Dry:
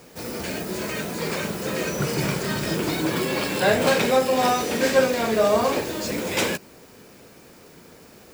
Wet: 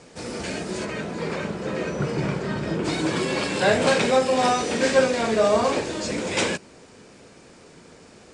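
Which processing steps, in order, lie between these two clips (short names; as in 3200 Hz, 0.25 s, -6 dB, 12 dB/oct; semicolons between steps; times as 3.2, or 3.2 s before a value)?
0.84–2.84 LPF 2400 Hz -> 1300 Hz 6 dB/oct; WMA 128 kbps 22050 Hz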